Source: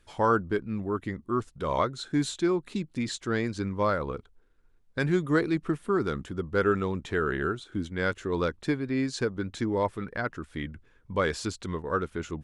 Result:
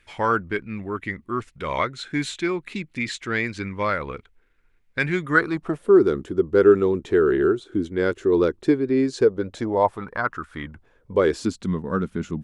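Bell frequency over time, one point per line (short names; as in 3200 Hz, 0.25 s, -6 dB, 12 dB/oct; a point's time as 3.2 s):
bell +14 dB 0.93 oct
5.19 s 2200 Hz
5.98 s 370 Hz
9.12 s 370 Hz
10.48 s 1400 Hz
11.61 s 200 Hz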